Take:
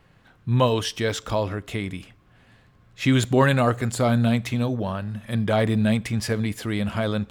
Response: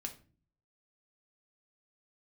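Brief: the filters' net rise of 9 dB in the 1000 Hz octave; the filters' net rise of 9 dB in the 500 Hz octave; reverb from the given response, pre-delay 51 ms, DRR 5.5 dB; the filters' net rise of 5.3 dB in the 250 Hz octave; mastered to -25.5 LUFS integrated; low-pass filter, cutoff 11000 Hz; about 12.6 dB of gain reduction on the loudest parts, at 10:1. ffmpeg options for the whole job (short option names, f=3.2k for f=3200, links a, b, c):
-filter_complex "[0:a]lowpass=11k,equalizer=f=250:t=o:g=4,equalizer=f=500:t=o:g=7.5,equalizer=f=1k:t=o:g=8.5,acompressor=threshold=-18dB:ratio=10,asplit=2[a][b];[1:a]atrim=start_sample=2205,adelay=51[c];[b][c]afir=irnorm=-1:irlink=0,volume=-3.5dB[d];[a][d]amix=inputs=2:normalize=0,volume=-2.5dB"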